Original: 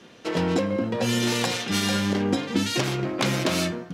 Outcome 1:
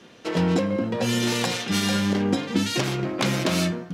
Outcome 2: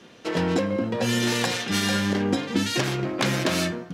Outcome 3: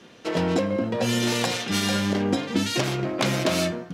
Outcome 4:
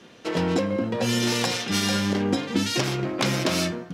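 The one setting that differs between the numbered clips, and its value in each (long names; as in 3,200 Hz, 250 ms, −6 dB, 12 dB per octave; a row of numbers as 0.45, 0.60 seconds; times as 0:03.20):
dynamic equaliser, frequency: 180, 1,700, 640, 5,300 Hertz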